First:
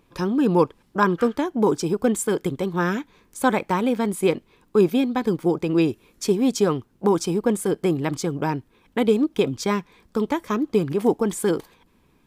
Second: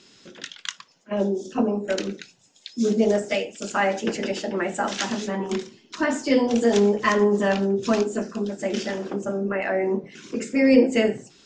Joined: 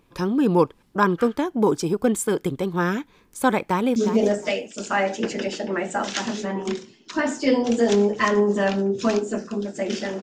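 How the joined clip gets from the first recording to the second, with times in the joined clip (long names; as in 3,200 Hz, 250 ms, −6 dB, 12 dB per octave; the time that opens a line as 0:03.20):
first
0:03.64–0:03.96: delay throw 360 ms, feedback 20%, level −9.5 dB
0:03.96: continue with second from 0:02.80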